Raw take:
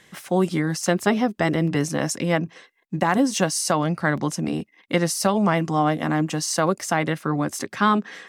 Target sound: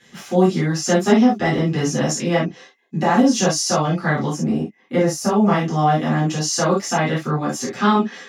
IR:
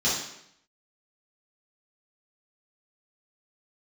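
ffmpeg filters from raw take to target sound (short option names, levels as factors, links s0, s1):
-filter_complex "[0:a]asettb=1/sr,asplit=3[s0][s1][s2];[s0]atrim=end=4.304[s3];[s1]atrim=start=4.3:end=5.48,asetpts=PTS-STARTPTS,afade=t=in:d=0.004:c=qsin,afade=t=out:st=1.176:d=0.004:c=qsin,equalizer=f=3900:w=0.93:g=-11[s4];[s2]atrim=start=5.476[s5];[s3][s4]acrossfade=d=0.004:c1=hsin:c2=qsin[s6];[s6][s5]acrossfade=d=0.004:c1=qsin:c2=hsin[s7];[1:a]atrim=start_sample=2205,atrim=end_sample=3528[s8];[s7][s8]afir=irnorm=-1:irlink=0,volume=0.355"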